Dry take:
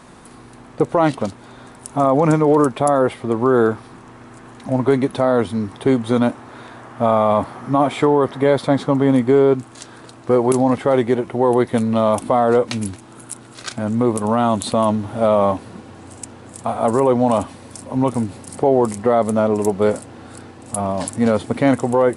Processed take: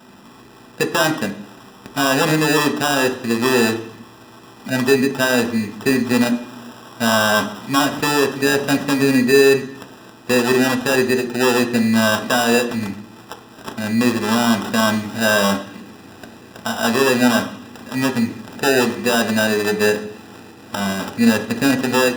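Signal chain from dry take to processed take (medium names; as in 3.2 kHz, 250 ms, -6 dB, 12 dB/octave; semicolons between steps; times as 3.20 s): sample-rate reducer 2.2 kHz, jitter 0%; reverberation RT60 0.60 s, pre-delay 3 ms, DRR 4.5 dB; trim -2 dB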